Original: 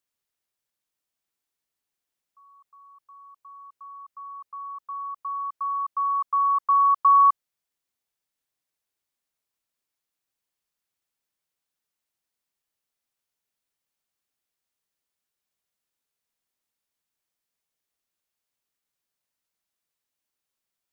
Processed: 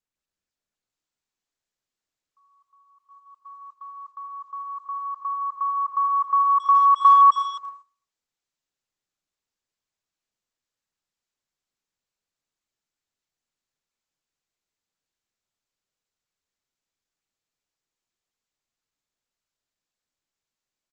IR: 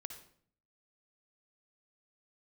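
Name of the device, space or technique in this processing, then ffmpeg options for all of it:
speakerphone in a meeting room: -filter_complex "[1:a]atrim=start_sample=2205[link_01];[0:a][link_01]afir=irnorm=-1:irlink=0,asplit=2[link_02][link_03];[link_03]adelay=270,highpass=300,lowpass=3400,asoftclip=type=hard:threshold=-24dB,volume=-13dB[link_04];[link_02][link_04]amix=inputs=2:normalize=0,dynaudnorm=framelen=550:gausssize=3:maxgain=6dB,agate=range=-10dB:threshold=-47dB:ratio=16:detection=peak,volume=2dB" -ar 48000 -c:a libopus -b:a 12k

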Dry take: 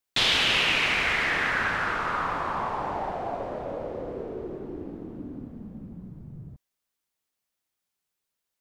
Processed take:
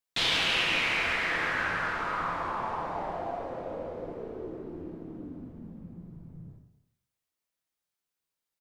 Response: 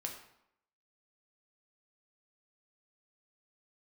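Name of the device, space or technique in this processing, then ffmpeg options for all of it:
bathroom: -filter_complex "[1:a]atrim=start_sample=2205[link_01];[0:a][link_01]afir=irnorm=-1:irlink=0,asplit=2[link_02][link_03];[link_03]adelay=262.4,volume=-21dB,highshelf=frequency=4000:gain=-5.9[link_04];[link_02][link_04]amix=inputs=2:normalize=0,volume=-3dB"

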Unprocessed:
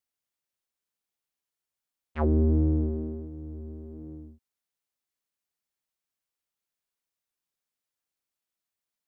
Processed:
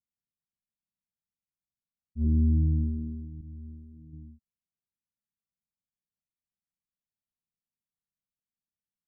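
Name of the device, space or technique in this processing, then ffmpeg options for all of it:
the neighbour's flat through the wall: -filter_complex "[0:a]asettb=1/sr,asplit=3[link_01][link_02][link_03];[link_01]atrim=end=3.414[link_04];[link_02]atrim=start=3.41:end=4.13,asetpts=PTS-STARTPTS,afade=type=in:duration=0.004:curve=qsin,afade=type=out:start_time=0.716:duration=0.004:curve=qsin,agate=range=-33dB:threshold=-35dB:ratio=3:detection=peak[link_05];[link_03]atrim=start=4.126[link_06];[link_04][link_05]acrossfade=duration=0.004:curve1=hsin:curve2=qsin[link_07];[link_07][link_06]acrossfade=duration=0.004:curve1=qsin:curve2=hsin,lowpass=frequency=220:width=0.5412,lowpass=frequency=220:width=1.3066,equalizer=frequency=200:width_type=o:width=0.88:gain=5"

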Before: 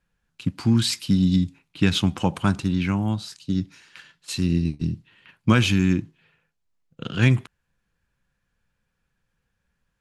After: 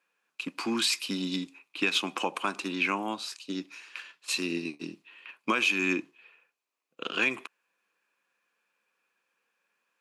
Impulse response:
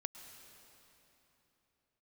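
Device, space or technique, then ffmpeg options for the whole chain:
laptop speaker: -af "highpass=frequency=320:width=0.5412,highpass=frequency=320:width=1.3066,equalizer=frequency=1100:width_type=o:width=0.32:gain=6.5,equalizer=frequency=2500:width_type=o:width=0.21:gain=11,alimiter=limit=-15dB:level=0:latency=1:release=210"

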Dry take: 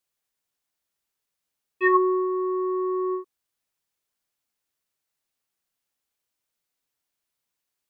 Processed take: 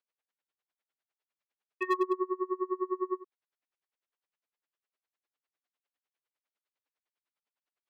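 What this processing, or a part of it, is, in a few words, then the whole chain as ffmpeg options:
helicopter radio: -af "highpass=360,lowpass=3000,aeval=exprs='val(0)*pow(10,-29*(0.5-0.5*cos(2*PI*9.9*n/s))/20)':channel_layout=same,asoftclip=type=hard:threshold=-22.5dB,volume=1dB"

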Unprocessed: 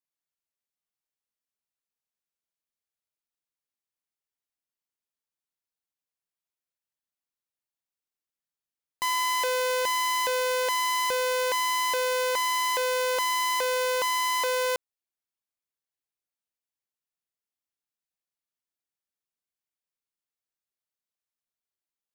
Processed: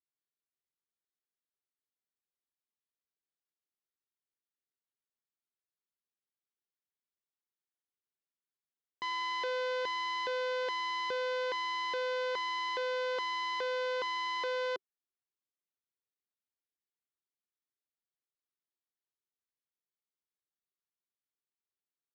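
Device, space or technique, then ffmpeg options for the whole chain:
guitar cabinet: -af "highpass=110,equalizer=frequency=390:width_type=q:width=4:gain=7,equalizer=frequency=610:width_type=q:width=4:gain=-6,equalizer=frequency=890:width_type=q:width=4:gain=-5,equalizer=frequency=2500:width_type=q:width=4:gain=-7,lowpass=frequency=4200:width=0.5412,lowpass=frequency=4200:width=1.3066,volume=-6dB"

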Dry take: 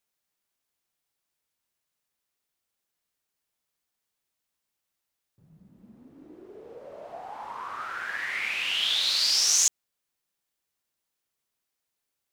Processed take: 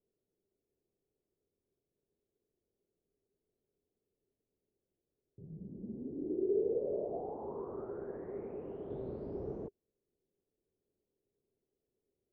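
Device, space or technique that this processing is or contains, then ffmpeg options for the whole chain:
under water: -filter_complex "[0:a]lowpass=frequency=500:width=0.5412,lowpass=frequency=500:width=1.3066,equalizer=frequency=400:width_type=o:width=0.39:gain=11,asettb=1/sr,asplit=3[link_01][link_02][link_03];[link_01]atrim=end=8.904[link_04];[link_02]atrim=start=8.9:end=9.67,asetpts=PTS-STARTPTS,afade=type=in:duration=0.004:curve=qsin,afade=type=out:start_time=0.766:duration=0.004:curve=qsin,bass=frequency=250:gain=9,treble=frequency=4000:gain=12[link_05];[link_03]atrim=start=9.666[link_06];[link_04][link_05]acrossfade=duration=0.004:curve1=hsin:curve2=qsin[link_07];[link_07][link_06]acrossfade=duration=0.004:curve1=qsin:curve2=hsin,volume=8dB"

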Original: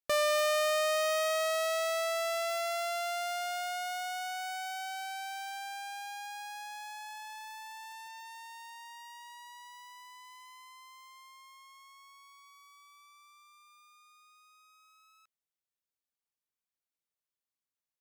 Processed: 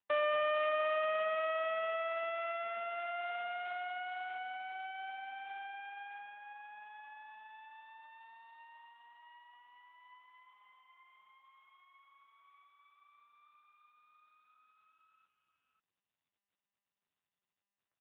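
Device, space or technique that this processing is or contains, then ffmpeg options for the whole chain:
satellite phone: -af "highpass=360,lowpass=3200,aecho=1:1:539:0.126,volume=-2dB" -ar 8000 -c:a libopencore_amrnb -b:a 6700

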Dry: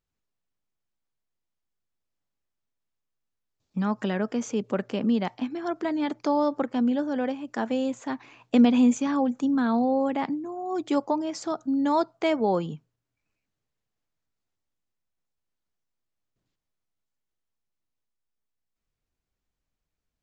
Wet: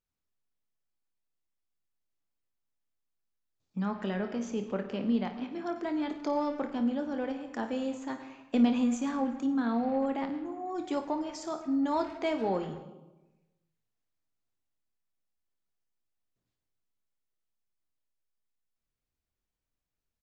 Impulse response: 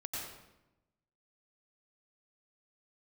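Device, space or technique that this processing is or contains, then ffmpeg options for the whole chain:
saturated reverb return: -filter_complex "[0:a]bandreject=frequency=50:width_type=h:width=6,bandreject=frequency=100:width_type=h:width=6,bandreject=frequency=150:width_type=h:width=6,asplit=2[link_01][link_02];[1:a]atrim=start_sample=2205[link_03];[link_02][link_03]afir=irnorm=-1:irlink=0,asoftclip=type=tanh:threshold=-24.5dB,volume=-6.5dB[link_04];[link_01][link_04]amix=inputs=2:normalize=0,asettb=1/sr,asplit=3[link_05][link_06][link_07];[link_05]atrim=end=3.864[link_08];[link_06]atrim=start=3.86:end=5.52,asetpts=PTS-STARTPTS,afade=type=in:duration=0.004:curve=qsin,afade=type=out:start_time=1.656:duration=0.004:curve=qsin,lowpass=5600[link_09];[link_07]atrim=start=5.516[link_10];[link_08][link_09]acrossfade=duration=0.004:curve1=hsin:curve2=qsin[link_11];[link_11][link_10]acrossfade=duration=0.004:curve1=qsin:curve2=hsin,aecho=1:1:26|55:0.316|0.251,volume=-8dB"

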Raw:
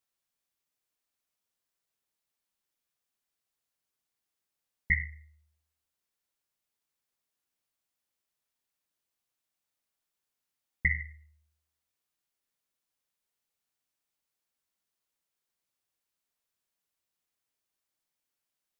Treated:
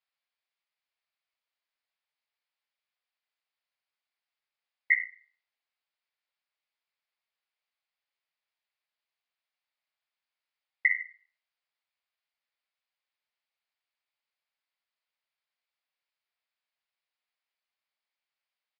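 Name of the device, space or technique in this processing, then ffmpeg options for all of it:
musical greeting card: -af "aresample=11025,aresample=44100,highpass=frequency=560:width=0.5412,highpass=frequency=560:width=1.3066,equalizer=frequency=2200:width_type=o:width=0.57:gain=5.5,volume=-1dB"

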